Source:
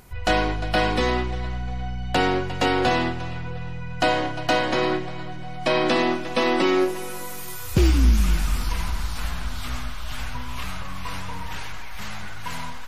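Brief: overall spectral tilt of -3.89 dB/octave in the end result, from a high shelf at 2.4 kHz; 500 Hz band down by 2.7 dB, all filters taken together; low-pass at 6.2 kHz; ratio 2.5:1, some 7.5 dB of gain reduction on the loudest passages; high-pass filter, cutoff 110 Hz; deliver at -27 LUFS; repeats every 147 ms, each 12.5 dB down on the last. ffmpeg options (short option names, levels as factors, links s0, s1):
-af "highpass=110,lowpass=6200,equalizer=f=500:t=o:g=-3.5,highshelf=f=2400:g=-4.5,acompressor=threshold=0.0316:ratio=2.5,aecho=1:1:147|294|441:0.237|0.0569|0.0137,volume=2.11"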